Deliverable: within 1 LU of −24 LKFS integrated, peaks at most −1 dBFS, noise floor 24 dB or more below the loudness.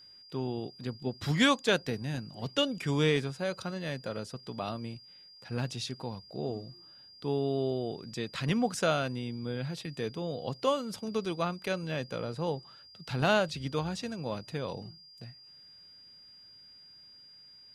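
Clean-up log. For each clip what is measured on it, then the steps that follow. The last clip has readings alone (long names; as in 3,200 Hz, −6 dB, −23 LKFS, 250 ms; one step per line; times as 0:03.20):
interfering tone 4,800 Hz; level of the tone −52 dBFS; integrated loudness −33.0 LKFS; sample peak −12.5 dBFS; target loudness −24.0 LKFS
→ notch filter 4,800 Hz, Q 30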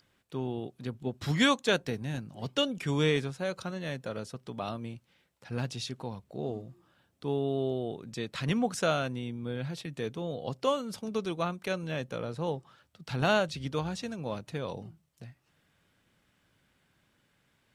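interfering tone none found; integrated loudness −33.0 LKFS; sample peak −12.5 dBFS; target loudness −24.0 LKFS
→ level +9 dB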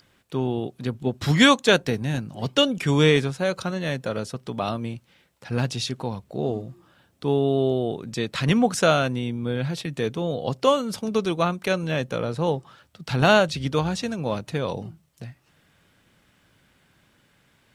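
integrated loudness −24.0 LKFS; sample peak −3.5 dBFS; background noise floor −63 dBFS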